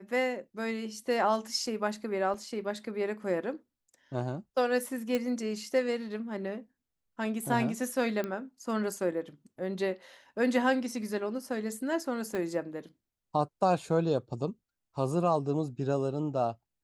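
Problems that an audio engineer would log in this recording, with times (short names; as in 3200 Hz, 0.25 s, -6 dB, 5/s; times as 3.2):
2.34 gap 2.3 ms
5.15 pop -17 dBFS
8.24 pop -21 dBFS
12.35 pop -22 dBFS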